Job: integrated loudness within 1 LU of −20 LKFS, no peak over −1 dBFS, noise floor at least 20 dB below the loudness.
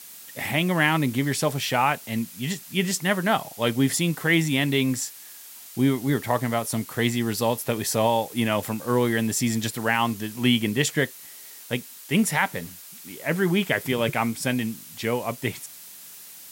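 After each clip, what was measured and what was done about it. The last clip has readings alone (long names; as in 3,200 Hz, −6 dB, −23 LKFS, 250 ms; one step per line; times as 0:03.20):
background noise floor −44 dBFS; target noise floor −45 dBFS; integrated loudness −24.5 LKFS; sample peak −8.0 dBFS; target loudness −20.0 LKFS
→ broadband denoise 6 dB, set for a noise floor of −44 dBFS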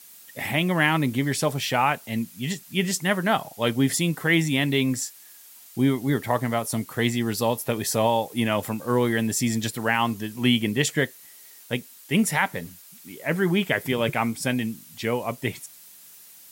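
background noise floor −48 dBFS; integrated loudness −24.5 LKFS; sample peak −8.0 dBFS; target loudness −20.0 LKFS
→ level +4.5 dB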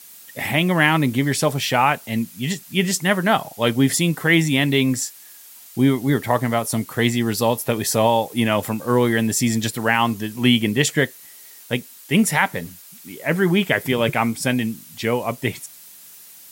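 integrated loudness −20.0 LKFS; sample peak −3.5 dBFS; background noise floor −44 dBFS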